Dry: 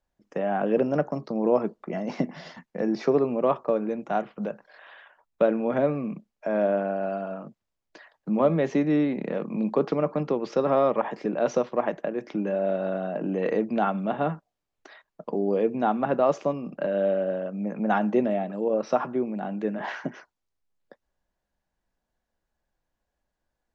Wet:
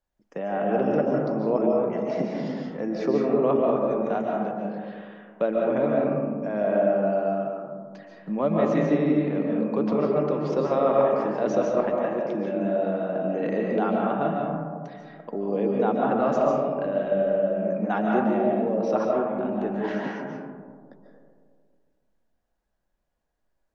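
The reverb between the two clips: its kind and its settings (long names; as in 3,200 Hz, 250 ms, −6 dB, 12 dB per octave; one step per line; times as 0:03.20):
comb and all-pass reverb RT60 1.9 s, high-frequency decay 0.25×, pre-delay 105 ms, DRR −2 dB
level −3.5 dB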